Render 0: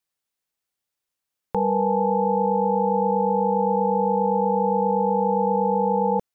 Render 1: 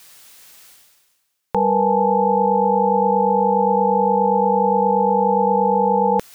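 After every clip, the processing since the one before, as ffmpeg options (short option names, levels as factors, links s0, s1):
-af "tiltshelf=f=970:g=-3.5,areverse,acompressor=mode=upward:threshold=0.0398:ratio=2.5,areverse,volume=2"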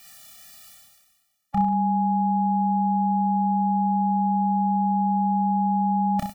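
-filter_complex "[0:a]asplit=2[s0][s1];[s1]aecho=0:1:30|63|99.3|139.2|183.2:0.631|0.398|0.251|0.158|0.1[s2];[s0][s2]amix=inputs=2:normalize=0,afftfilt=real='re*eq(mod(floor(b*sr/1024/280),2),0)':imag='im*eq(mod(floor(b*sr/1024/280),2),0)':win_size=1024:overlap=0.75"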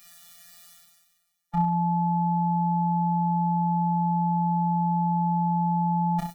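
-af "afftfilt=real='hypot(re,im)*cos(PI*b)':imag='0':win_size=1024:overlap=0.75"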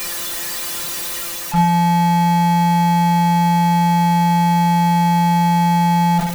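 -af "aeval=exprs='val(0)+0.5*0.0422*sgn(val(0))':c=same,areverse,acompressor=mode=upward:threshold=0.0251:ratio=2.5,areverse,volume=2.37"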